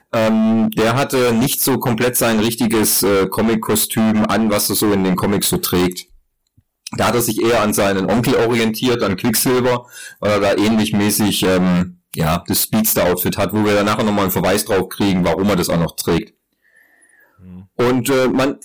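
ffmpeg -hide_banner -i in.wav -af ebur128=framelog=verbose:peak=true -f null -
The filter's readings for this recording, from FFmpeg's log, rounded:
Integrated loudness:
  I:         -15.9 LUFS
  Threshold: -26.4 LUFS
Loudness range:
  LRA:         3.0 LU
  Threshold: -36.4 LUFS
  LRA low:   -18.2 LUFS
  LRA high:  -15.2 LUFS
True peak:
  Peak:       -7.8 dBFS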